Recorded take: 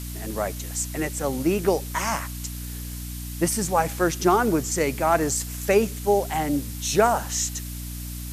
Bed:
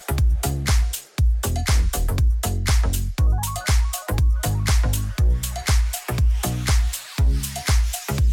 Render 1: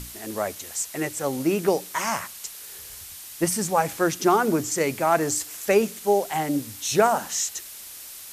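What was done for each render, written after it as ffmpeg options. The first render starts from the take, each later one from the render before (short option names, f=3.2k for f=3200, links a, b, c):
-af "bandreject=f=60:t=h:w=6,bandreject=f=120:t=h:w=6,bandreject=f=180:t=h:w=6,bandreject=f=240:t=h:w=6,bandreject=f=300:t=h:w=6"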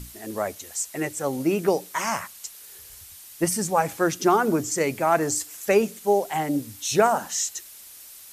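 -af "afftdn=nr=6:nf=-41"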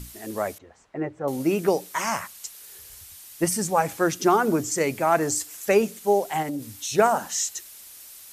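-filter_complex "[0:a]asettb=1/sr,asplit=3[a][b][c];[a]atrim=end=0.584[d];[b]atrim=start=0.58:end=1.28,asetpts=PTS-STARTPTS,afade=t=in:d=0.004:c=qsin,afade=t=out:st=0.696:d=0.004:c=qsin,lowpass=1.2k[e];[c]atrim=start=1.276[f];[d][e]acrossfade=d=0.004:c1=hsin:c2=qsin[g];[g][f]acrossfade=d=0.004:c1=qsin:c2=hsin,asplit=3[h][i][j];[h]afade=t=out:st=6.42:d=0.02[k];[i]acompressor=threshold=-26dB:ratio=6:attack=3.2:release=140:knee=1:detection=peak,afade=t=in:st=6.42:d=0.02,afade=t=out:st=6.97:d=0.02[l];[j]afade=t=in:st=6.97:d=0.02[m];[k][l][m]amix=inputs=3:normalize=0"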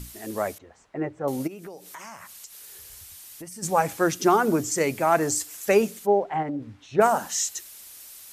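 -filter_complex "[0:a]asplit=3[a][b][c];[a]afade=t=out:st=1.46:d=0.02[d];[b]acompressor=threshold=-39dB:ratio=5:attack=3.2:release=140:knee=1:detection=peak,afade=t=in:st=1.46:d=0.02,afade=t=out:st=3.62:d=0.02[e];[c]afade=t=in:st=3.62:d=0.02[f];[d][e][f]amix=inputs=3:normalize=0,asplit=3[g][h][i];[g]afade=t=out:st=6.05:d=0.02[j];[h]lowpass=1.7k,afade=t=in:st=6.05:d=0.02,afade=t=out:st=7:d=0.02[k];[i]afade=t=in:st=7:d=0.02[l];[j][k][l]amix=inputs=3:normalize=0"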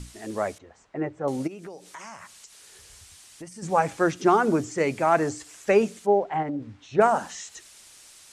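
-filter_complex "[0:a]acrossover=split=3200[a][b];[b]acompressor=threshold=-40dB:ratio=4:attack=1:release=60[c];[a][c]amix=inputs=2:normalize=0,lowpass=f=9.1k:w=0.5412,lowpass=f=9.1k:w=1.3066"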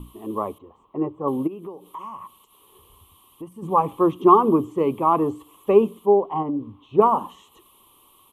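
-af "firequalizer=gain_entry='entry(120,0);entry(270,5);entry(390,6);entry(660,-6);entry(1100,14);entry(1500,-24);entry(3100,0);entry(4900,-29);entry(7700,-20);entry(12000,7)':delay=0.05:min_phase=1"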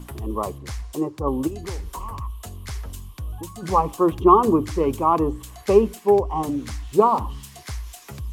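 -filter_complex "[1:a]volume=-13.5dB[a];[0:a][a]amix=inputs=2:normalize=0"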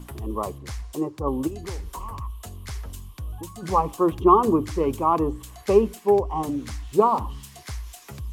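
-af "volume=-2dB"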